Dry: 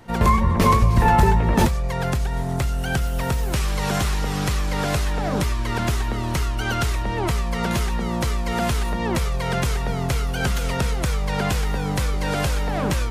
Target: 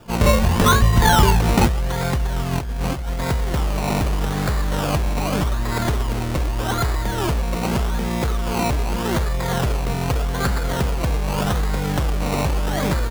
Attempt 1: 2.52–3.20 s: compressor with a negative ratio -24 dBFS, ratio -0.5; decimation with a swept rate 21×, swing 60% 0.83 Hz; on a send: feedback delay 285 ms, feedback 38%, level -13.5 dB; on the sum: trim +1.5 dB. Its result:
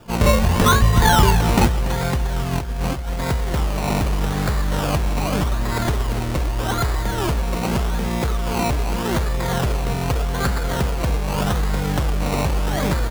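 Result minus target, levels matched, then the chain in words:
echo-to-direct +9 dB
2.52–3.20 s: compressor with a negative ratio -24 dBFS, ratio -0.5; decimation with a swept rate 21×, swing 60% 0.83 Hz; on a send: feedback delay 285 ms, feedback 38%, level -22.5 dB; on the sum: trim +1.5 dB

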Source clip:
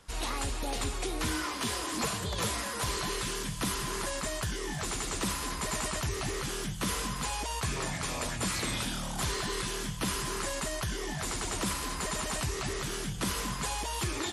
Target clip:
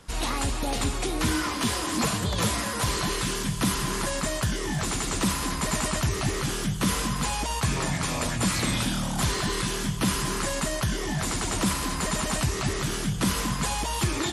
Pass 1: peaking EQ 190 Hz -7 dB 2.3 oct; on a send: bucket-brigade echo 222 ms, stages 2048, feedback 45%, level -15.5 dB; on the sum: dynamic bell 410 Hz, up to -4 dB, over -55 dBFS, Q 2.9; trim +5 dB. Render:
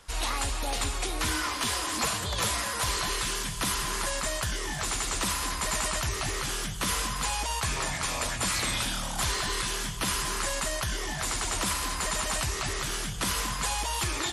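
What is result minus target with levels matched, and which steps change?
250 Hz band -8.5 dB
change: peaking EQ 190 Hz +5 dB 2.3 oct

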